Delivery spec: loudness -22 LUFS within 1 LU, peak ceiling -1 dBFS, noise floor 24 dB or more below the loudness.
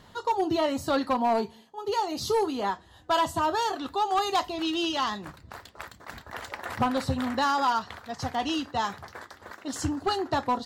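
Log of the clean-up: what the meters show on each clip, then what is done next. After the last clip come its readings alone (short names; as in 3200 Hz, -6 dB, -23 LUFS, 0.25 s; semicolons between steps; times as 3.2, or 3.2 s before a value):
clipped 0.8%; flat tops at -18.5 dBFS; loudness -28.0 LUFS; peak -18.5 dBFS; loudness target -22.0 LUFS
-> clip repair -18.5 dBFS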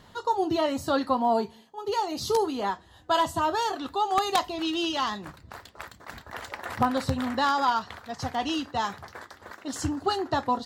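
clipped 0.0%; loudness -27.5 LUFS; peak -9.5 dBFS; loudness target -22.0 LUFS
-> gain +5.5 dB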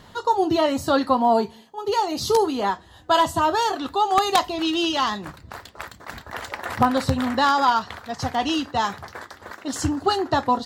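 loudness -22.0 LUFS; peak -4.0 dBFS; noise floor -49 dBFS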